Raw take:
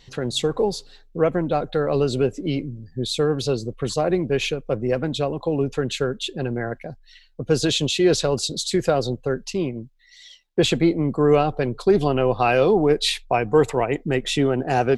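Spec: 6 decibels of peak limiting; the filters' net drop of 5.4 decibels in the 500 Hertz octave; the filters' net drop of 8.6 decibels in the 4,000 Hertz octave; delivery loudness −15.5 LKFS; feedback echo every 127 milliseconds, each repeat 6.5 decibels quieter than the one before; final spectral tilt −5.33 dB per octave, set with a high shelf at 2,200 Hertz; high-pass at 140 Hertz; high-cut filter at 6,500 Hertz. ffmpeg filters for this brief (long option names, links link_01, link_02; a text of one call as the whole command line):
ffmpeg -i in.wav -af "highpass=140,lowpass=6500,equalizer=frequency=500:width_type=o:gain=-6.5,highshelf=frequency=2200:gain=-3,equalizer=frequency=4000:width_type=o:gain=-7,alimiter=limit=-15.5dB:level=0:latency=1,aecho=1:1:127|254|381|508|635|762:0.473|0.222|0.105|0.0491|0.0231|0.0109,volume=11.5dB" out.wav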